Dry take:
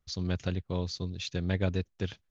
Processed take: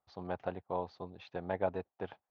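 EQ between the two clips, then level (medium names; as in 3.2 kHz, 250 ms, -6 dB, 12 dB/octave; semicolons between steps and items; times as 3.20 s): band-pass filter 800 Hz, Q 3.7; distance through air 210 m; +11.5 dB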